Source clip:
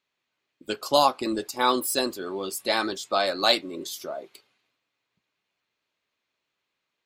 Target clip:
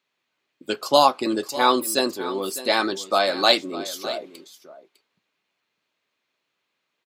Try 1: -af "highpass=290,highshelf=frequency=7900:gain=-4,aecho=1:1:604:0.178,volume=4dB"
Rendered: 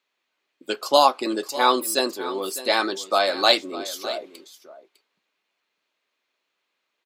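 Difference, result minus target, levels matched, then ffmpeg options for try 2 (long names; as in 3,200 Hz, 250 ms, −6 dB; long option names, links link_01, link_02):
125 Hz band −8.0 dB
-af "highpass=130,highshelf=frequency=7900:gain=-4,aecho=1:1:604:0.178,volume=4dB"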